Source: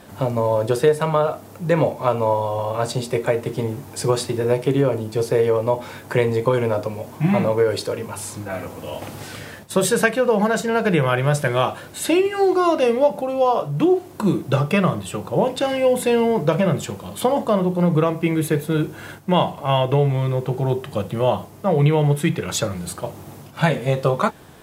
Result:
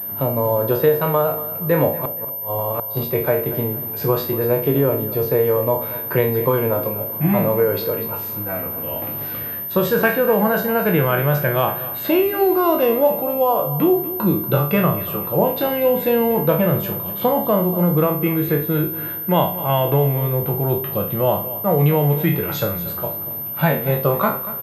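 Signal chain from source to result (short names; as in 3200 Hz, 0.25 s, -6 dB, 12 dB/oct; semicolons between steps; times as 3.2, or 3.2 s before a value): spectral trails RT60 0.39 s; 2.02–2.97 flipped gate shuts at -10 dBFS, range -28 dB; high shelf 3400 Hz -10.5 dB; feedback echo 0.237 s, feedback 34%, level -15 dB; pulse-width modulation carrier 13000 Hz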